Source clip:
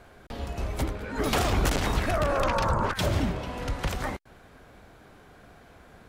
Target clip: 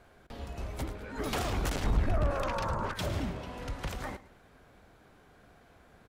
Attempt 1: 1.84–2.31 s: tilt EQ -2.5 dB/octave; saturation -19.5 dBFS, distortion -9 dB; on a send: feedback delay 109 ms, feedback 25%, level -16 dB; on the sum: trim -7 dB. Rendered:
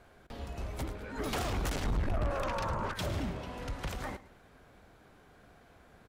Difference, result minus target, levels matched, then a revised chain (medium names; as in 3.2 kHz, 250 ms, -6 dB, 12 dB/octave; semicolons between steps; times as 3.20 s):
saturation: distortion +7 dB
1.84–2.31 s: tilt EQ -2.5 dB/octave; saturation -12 dBFS, distortion -16 dB; on a send: feedback delay 109 ms, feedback 25%, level -16 dB; on the sum: trim -7 dB